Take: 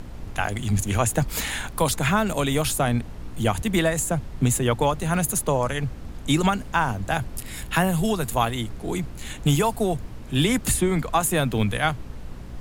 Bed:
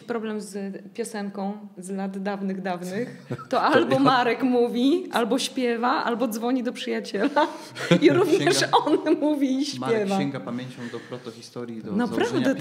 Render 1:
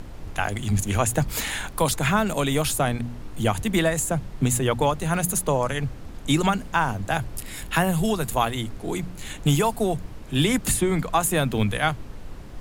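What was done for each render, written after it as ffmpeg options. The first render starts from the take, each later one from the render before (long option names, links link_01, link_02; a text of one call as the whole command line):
ffmpeg -i in.wav -af "bandreject=frequency=60:width_type=h:width=4,bandreject=frequency=120:width_type=h:width=4,bandreject=frequency=180:width_type=h:width=4,bandreject=frequency=240:width_type=h:width=4" out.wav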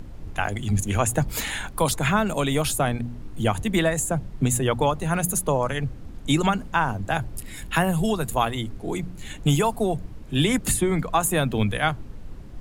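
ffmpeg -i in.wav -af "afftdn=noise_reduction=7:noise_floor=-39" out.wav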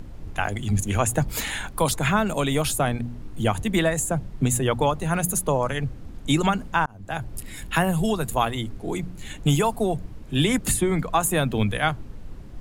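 ffmpeg -i in.wav -filter_complex "[0:a]asplit=2[link_01][link_02];[link_01]atrim=end=6.86,asetpts=PTS-STARTPTS,afade=type=out:start_time=6.856:duration=0.004:curve=hsin[link_03];[link_02]atrim=start=6.86,asetpts=PTS-STARTPTS,afade=type=in:duration=0.5[link_04];[link_03][link_04]concat=n=2:v=0:a=1" out.wav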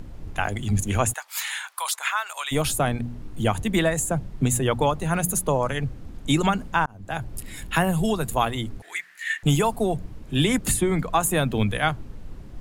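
ffmpeg -i in.wav -filter_complex "[0:a]asplit=3[link_01][link_02][link_03];[link_01]afade=type=out:start_time=1.12:duration=0.02[link_04];[link_02]highpass=frequency=990:width=0.5412,highpass=frequency=990:width=1.3066,afade=type=in:start_time=1.12:duration=0.02,afade=type=out:start_time=2.51:duration=0.02[link_05];[link_03]afade=type=in:start_time=2.51:duration=0.02[link_06];[link_04][link_05][link_06]amix=inputs=3:normalize=0,asettb=1/sr,asplit=3[link_07][link_08][link_09];[link_07]atrim=end=8.824[link_10];[link_08]atrim=start=8.82:end=9.43,asetpts=PTS-STARTPTS,afade=type=in:duration=0.004:curve=qsin,afade=type=out:start_time=0.606:duration=0.004:curve=qsin,highpass=frequency=1800:width_type=q:width=11[link_11];[link_09]atrim=start=9.426[link_12];[link_10][link_11]acrossfade=duration=0.004:curve1=hsin:curve2=qsin[link_13];[link_13][link_12]acrossfade=duration=0.004:curve1=qsin:curve2=hsin" out.wav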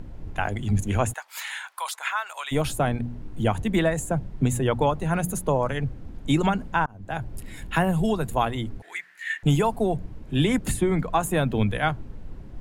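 ffmpeg -i in.wav -af "highshelf=frequency=3200:gain=-9,bandreject=frequency=1200:width=16" out.wav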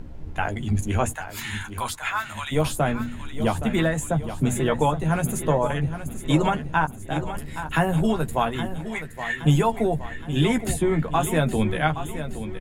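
ffmpeg -i in.wav -filter_complex "[0:a]asplit=2[link_01][link_02];[link_02]adelay=13,volume=-6.5dB[link_03];[link_01][link_03]amix=inputs=2:normalize=0,aecho=1:1:820|1640|2460|3280|4100:0.282|0.144|0.0733|0.0374|0.0191" out.wav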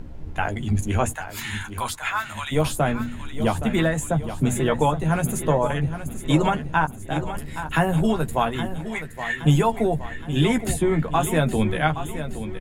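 ffmpeg -i in.wav -af "volume=1dB" out.wav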